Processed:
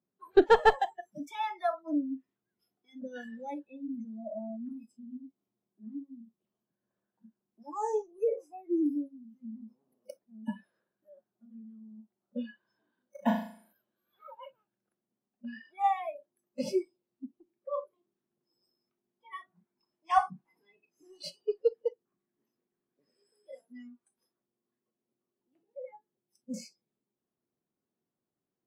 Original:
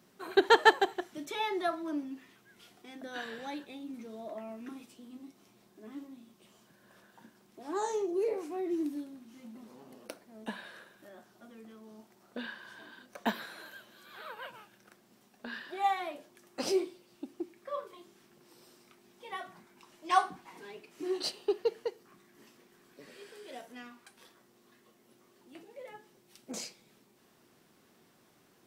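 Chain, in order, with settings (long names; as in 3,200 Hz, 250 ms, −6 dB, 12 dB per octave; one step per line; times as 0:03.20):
one-sided soft clipper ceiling −12 dBFS
noise reduction from a noise print of the clip's start 29 dB
tilt shelving filter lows +7.5 dB, about 1,200 Hz
0:13.03–0:13.73: flutter between parallel walls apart 6.4 metres, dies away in 0.49 s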